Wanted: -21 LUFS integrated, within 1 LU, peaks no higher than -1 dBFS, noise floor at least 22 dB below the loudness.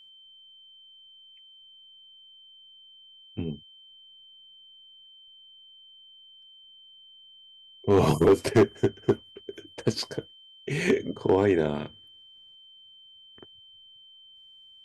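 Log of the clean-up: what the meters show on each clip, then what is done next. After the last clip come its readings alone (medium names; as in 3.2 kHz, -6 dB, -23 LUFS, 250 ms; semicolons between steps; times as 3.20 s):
clipped samples 0.4%; clipping level -13.0 dBFS; steady tone 3.1 kHz; tone level -50 dBFS; loudness -25.5 LUFS; peak level -13.0 dBFS; loudness target -21.0 LUFS
-> clip repair -13 dBFS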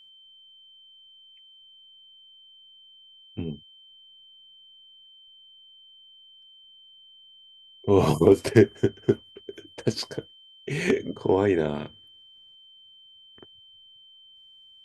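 clipped samples 0.0%; steady tone 3.1 kHz; tone level -50 dBFS
-> band-stop 3.1 kHz, Q 30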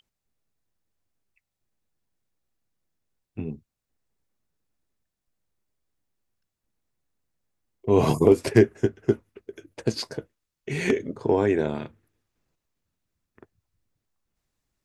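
steady tone not found; loudness -23.5 LUFS; peak level -4.0 dBFS; loudness target -21.0 LUFS
-> trim +2.5 dB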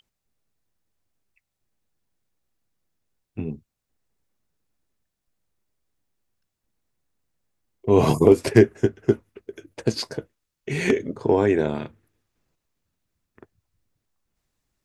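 loudness -21.0 LUFS; peak level -1.5 dBFS; noise floor -82 dBFS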